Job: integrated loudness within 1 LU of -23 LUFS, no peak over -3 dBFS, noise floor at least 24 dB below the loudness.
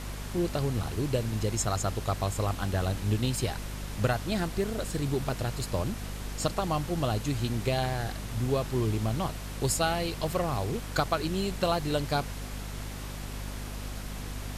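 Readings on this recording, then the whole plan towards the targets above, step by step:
hum 50 Hz; highest harmonic 250 Hz; hum level -35 dBFS; noise floor -38 dBFS; noise floor target -55 dBFS; loudness -31.0 LUFS; peak level -12.0 dBFS; loudness target -23.0 LUFS
-> hum notches 50/100/150/200/250 Hz; noise print and reduce 17 dB; trim +8 dB

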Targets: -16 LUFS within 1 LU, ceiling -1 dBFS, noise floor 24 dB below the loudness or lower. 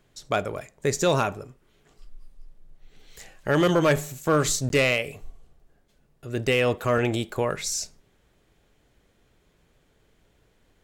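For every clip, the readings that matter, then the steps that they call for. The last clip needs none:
clipped samples 0.2%; clipping level -13.5 dBFS; dropouts 1; longest dropout 12 ms; loudness -24.5 LUFS; peak level -13.5 dBFS; loudness target -16.0 LUFS
-> clip repair -13.5 dBFS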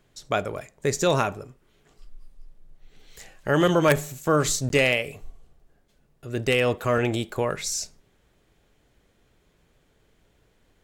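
clipped samples 0.0%; dropouts 1; longest dropout 12 ms
-> interpolate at 4.69 s, 12 ms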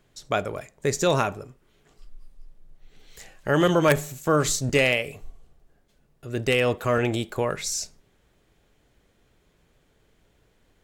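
dropouts 0; loudness -24.0 LUFS; peak level -4.5 dBFS; loudness target -16.0 LUFS
-> trim +8 dB; peak limiter -1 dBFS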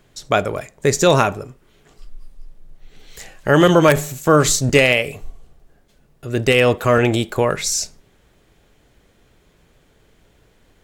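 loudness -16.5 LUFS; peak level -1.0 dBFS; noise floor -57 dBFS

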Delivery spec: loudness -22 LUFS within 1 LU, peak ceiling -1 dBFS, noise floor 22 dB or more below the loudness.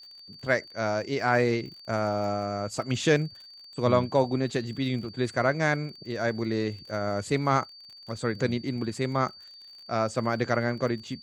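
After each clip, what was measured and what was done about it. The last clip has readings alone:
tick rate 39 per s; steady tone 4.6 kHz; tone level -46 dBFS; loudness -28.0 LUFS; peak level -9.0 dBFS; loudness target -22.0 LUFS
-> de-click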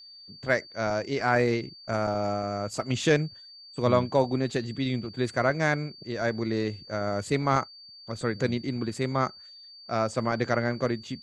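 tick rate 0.089 per s; steady tone 4.6 kHz; tone level -46 dBFS
-> band-stop 4.6 kHz, Q 30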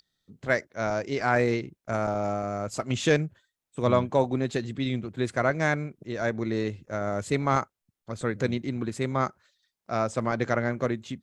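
steady tone not found; loudness -28.0 LUFS; peak level -8.5 dBFS; loudness target -22.0 LUFS
-> trim +6 dB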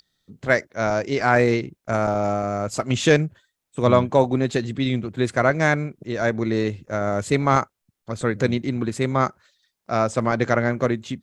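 loudness -22.0 LUFS; peak level -2.5 dBFS; noise floor -81 dBFS

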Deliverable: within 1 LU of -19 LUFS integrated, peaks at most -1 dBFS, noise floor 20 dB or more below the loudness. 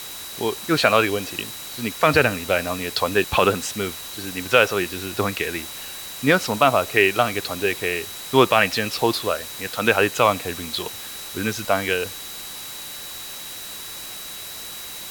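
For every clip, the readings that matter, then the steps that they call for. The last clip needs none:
steady tone 3.9 kHz; tone level -39 dBFS; noise floor -35 dBFS; noise floor target -42 dBFS; loudness -22.0 LUFS; peak level -2.5 dBFS; loudness target -19.0 LUFS
-> band-stop 3.9 kHz, Q 30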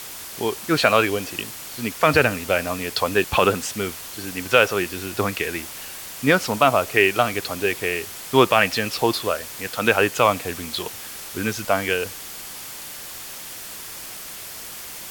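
steady tone not found; noise floor -36 dBFS; noise floor target -42 dBFS
-> noise reduction 6 dB, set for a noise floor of -36 dBFS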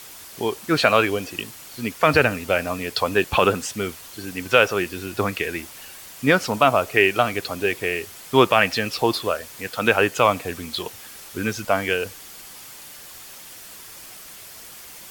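noise floor -42 dBFS; loudness -21.5 LUFS; peak level -2.5 dBFS; loudness target -19.0 LUFS
-> trim +2.5 dB; peak limiter -1 dBFS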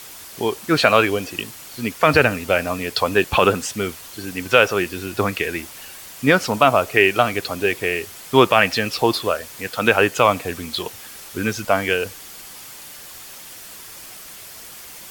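loudness -19.0 LUFS; peak level -1.0 dBFS; noise floor -39 dBFS

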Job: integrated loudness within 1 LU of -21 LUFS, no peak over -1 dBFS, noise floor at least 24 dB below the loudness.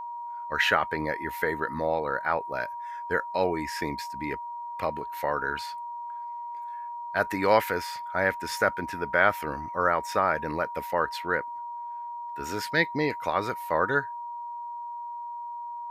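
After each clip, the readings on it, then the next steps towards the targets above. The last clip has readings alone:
steady tone 950 Hz; tone level -34 dBFS; loudness -29.0 LUFS; peak level -6.5 dBFS; loudness target -21.0 LUFS
-> band-stop 950 Hz, Q 30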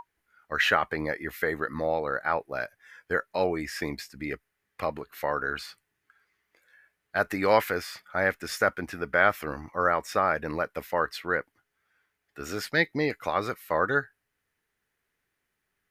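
steady tone not found; loudness -28.5 LUFS; peak level -7.0 dBFS; loudness target -21.0 LUFS
-> trim +7.5 dB; peak limiter -1 dBFS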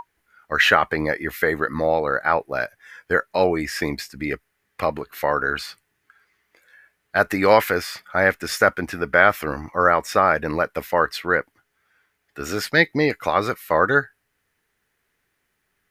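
loudness -21.0 LUFS; peak level -1.0 dBFS; noise floor -73 dBFS

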